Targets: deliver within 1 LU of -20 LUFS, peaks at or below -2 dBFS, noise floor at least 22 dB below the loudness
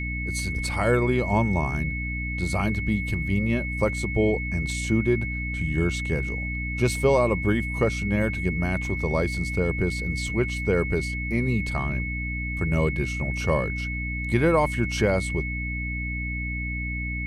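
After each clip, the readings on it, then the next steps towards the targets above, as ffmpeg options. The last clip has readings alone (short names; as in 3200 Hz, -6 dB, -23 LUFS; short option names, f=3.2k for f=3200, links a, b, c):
hum 60 Hz; harmonics up to 300 Hz; hum level -28 dBFS; steady tone 2200 Hz; tone level -31 dBFS; loudness -25.5 LUFS; peak -8.0 dBFS; loudness target -20.0 LUFS
-> -af "bandreject=f=60:t=h:w=4,bandreject=f=120:t=h:w=4,bandreject=f=180:t=h:w=4,bandreject=f=240:t=h:w=4,bandreject=f=300:t=h:w=4"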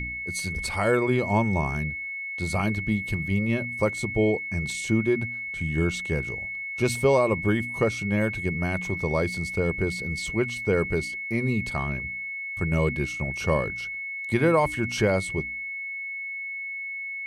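hum none; steady tone 2200 Hz; tone level -31 dBFS
-> -af "bandreject=f=2.2k:w=30"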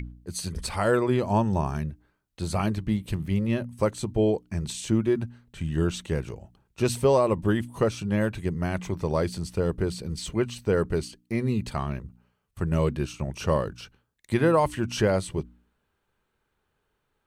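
steady tone none; loudness -27.0 LUFS; peak -10.0 dBFS; loudness target -20.0 LUFS
-> -af "volume=7dB"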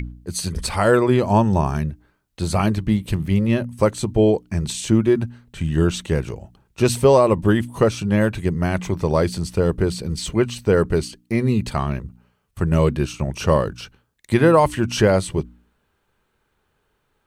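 loudness -20.0 LUFS; peak -3.0 dBFS; noise floor -70 dBFS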